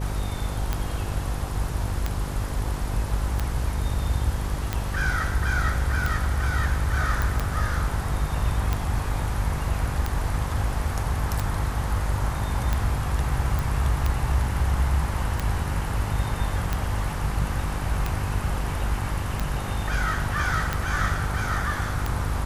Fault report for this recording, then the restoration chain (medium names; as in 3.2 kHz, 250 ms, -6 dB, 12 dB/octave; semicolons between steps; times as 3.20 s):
buzz 50 Hz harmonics 11 -30 dBFS
tick 45 rpm -11 dBFS
7.22 s: pop
13.59 s: pop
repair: de-click; de-hum 50 Hz, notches 11